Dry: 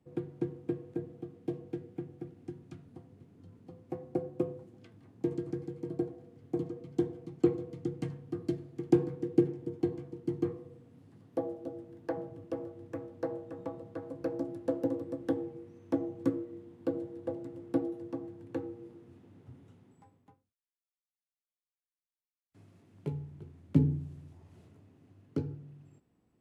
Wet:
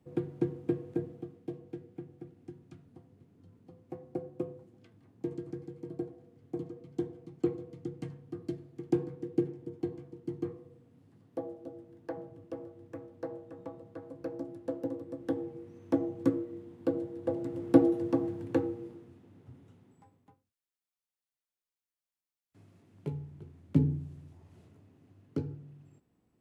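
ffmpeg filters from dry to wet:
-af "volume=7.5,afade=t=out:st=1:d=0.46:silence=0.421697,afade=t=in:st=15.06:d=0.75:silence=0.473151,afade=t=in:st=17.18:d=0.64:silence=0.421697,afade=t=out:st=18.33:d=0.82:silence=0.298538"

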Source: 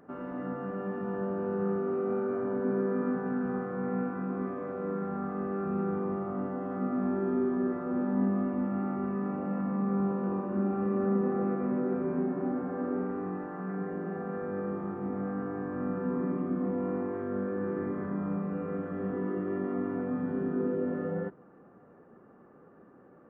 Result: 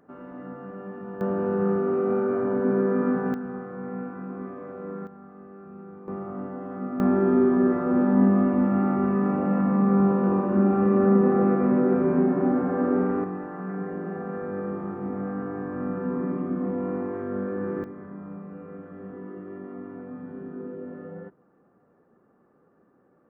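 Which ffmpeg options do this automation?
-af "asetnsamples=n=441:p=0,asendcmd='1.21 volume volume 6.5dB;3.34 volume volume -2dB;5.07 volume volume -12dB;6.08 volume volume -0.5dB;7 volume volume 9dB;13.24 volume volume 3dB;17.84 volume volume -6.5dB',volume=0.708"

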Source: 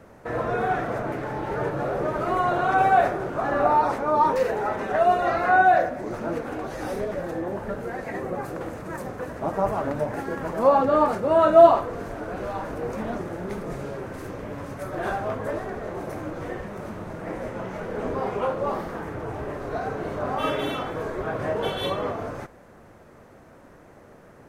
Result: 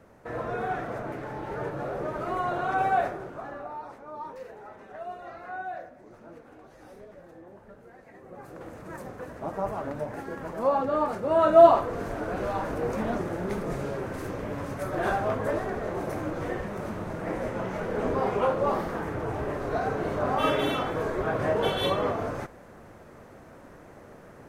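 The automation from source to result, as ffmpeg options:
-af "volume=5.01,afade=t=out:st=2.95:d=0.7:silence=0.223872,afade=t=in:st=8.22:d=0.66:silence=0.237137,afade=t=in:st=11.07:d=1.06:silence=0.421697"

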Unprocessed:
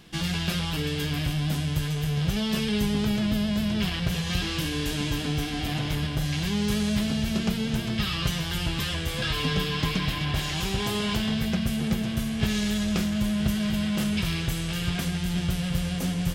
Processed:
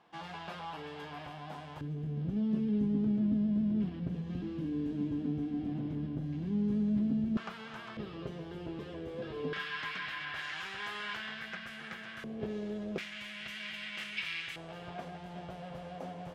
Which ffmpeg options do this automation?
-af "asetnsamples=n=441:p=0,asendcmd='1.81 bandpass f 260;7.37 bandpass f 1200;7.97 bandpass f 410;9.53 bandpass f 1600;12.24 bandpass f 450;12.98 bandpass f 2200;14.56 bandpass f 690',bandpass=f=870:t=q:w=2.5:csg=0"

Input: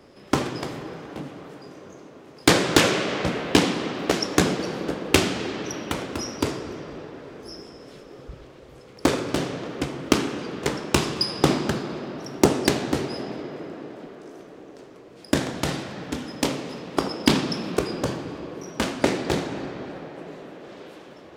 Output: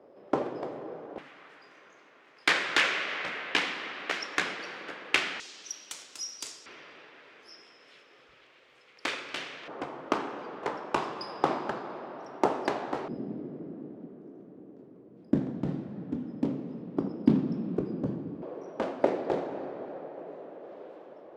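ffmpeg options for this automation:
-af "asetnsamples=n=441:p=0,asendcmd='1.18 bandpass f 2000;5.4 bandpass f 7000;6.66 bandpass f 2400;9.68 bandpass f 890;13.08 bandpass f 210;18.42 bandpass f 590',bandpass=f=570:t=q:w=1.5:csg=0"

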